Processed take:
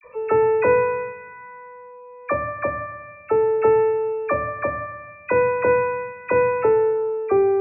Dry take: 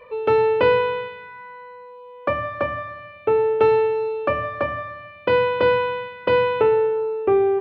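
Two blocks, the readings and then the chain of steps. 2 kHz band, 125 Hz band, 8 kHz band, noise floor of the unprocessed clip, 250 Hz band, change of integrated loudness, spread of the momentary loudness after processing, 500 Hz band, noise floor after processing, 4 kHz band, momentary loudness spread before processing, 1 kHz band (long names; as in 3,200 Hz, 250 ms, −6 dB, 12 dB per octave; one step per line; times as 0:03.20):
−1.0 dB, −1.0 dB, can't be measured, −42 dBFS, −0.5 dB, 0.0 dB, 19 LU, 0.0 dB, −43 dBFS, below −35 dB, 17 LU, −0.5 dB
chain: Chebyshev low-pass filter 2,600 Hz, order 10
all-pass dispersion lows, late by 44 ms, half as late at 1,200 Hz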